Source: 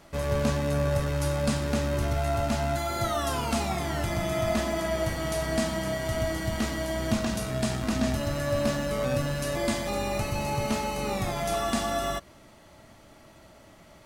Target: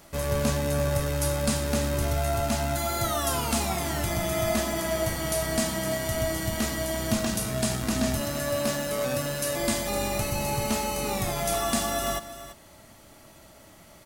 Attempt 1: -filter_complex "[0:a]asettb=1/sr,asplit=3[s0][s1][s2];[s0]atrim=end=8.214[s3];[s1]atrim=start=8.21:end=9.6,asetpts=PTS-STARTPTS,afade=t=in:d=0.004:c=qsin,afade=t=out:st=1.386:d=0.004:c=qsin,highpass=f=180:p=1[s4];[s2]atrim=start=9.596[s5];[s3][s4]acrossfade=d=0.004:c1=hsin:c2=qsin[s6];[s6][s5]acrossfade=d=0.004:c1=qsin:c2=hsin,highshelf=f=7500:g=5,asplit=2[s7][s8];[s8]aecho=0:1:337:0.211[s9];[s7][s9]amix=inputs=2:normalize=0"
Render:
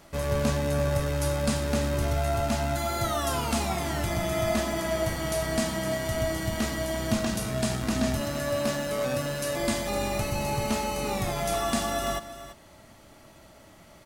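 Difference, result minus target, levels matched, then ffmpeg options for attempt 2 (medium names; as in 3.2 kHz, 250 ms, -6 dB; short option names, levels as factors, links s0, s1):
8 kHz band -3.5 dB
-filter_complex "[0:a]asettb=1/sr,asplit=3[s0][s1][s2];[s0]atrim=end=8.214[s3];[s1]atrim=start=8.21:end=9.6,asetpts=PTS-STARTPTS,afade=t=in:d=0.004:c=qsin,afade=t=out:st=1.386:d=0.004:c=qsin,highpass=f=180:p=1[s4];[s2]atrim=start=9.596[s5];[s3][s4]acrossfade=d=0.004:c1=hsin:c2=qsin[s6];[s6][s5]acrossfade=d=0.004:c1=qsin:c2=hsin,highshelf=f=7500:g=13.5,asplit=2[s7][s8];[s8]aecho=0:1:337:0.211[s9];[s7][s9]amix=inputs=2:normalize=0"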